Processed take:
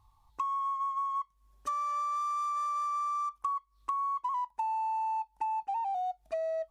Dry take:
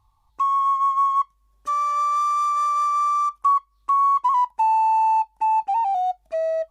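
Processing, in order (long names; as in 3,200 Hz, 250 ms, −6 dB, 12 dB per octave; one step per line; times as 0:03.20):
downward compressor 6 to 1, threshold −31 dBFS, peak gain reduction 14.5 dB
level −1 dB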